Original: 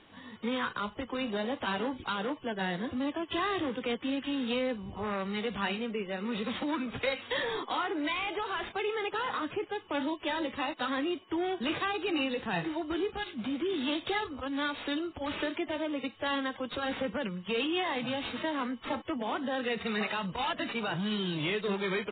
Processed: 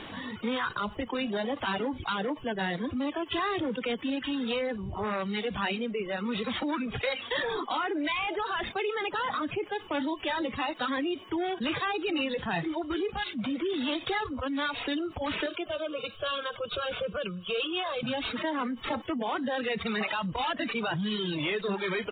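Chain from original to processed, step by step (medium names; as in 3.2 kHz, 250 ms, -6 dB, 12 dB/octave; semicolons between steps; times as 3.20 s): reverb removal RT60 1.3 s; 15.46–18.03 s: static phaser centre 1.3 kHz, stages 8; level flattener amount 50%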